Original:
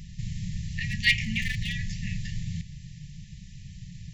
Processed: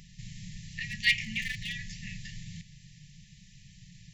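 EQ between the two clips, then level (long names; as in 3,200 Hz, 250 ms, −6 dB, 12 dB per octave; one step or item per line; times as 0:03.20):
parametric band 70 Hz −9.5 dB 0.73 octaves
low-shelf EQ 340 Hz −7.5 dB
−2.5 dB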